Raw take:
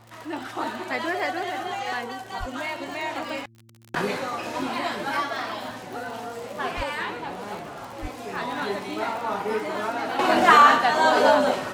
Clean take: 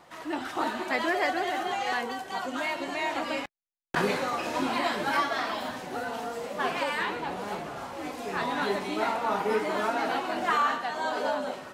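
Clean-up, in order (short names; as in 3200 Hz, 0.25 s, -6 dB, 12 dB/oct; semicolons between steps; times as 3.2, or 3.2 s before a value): de-click; de-hum 113.7 Hz, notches 3; de-plosive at 2.39/6.76/8.01; gain 0 dB, from 10.19 s -11.5 dB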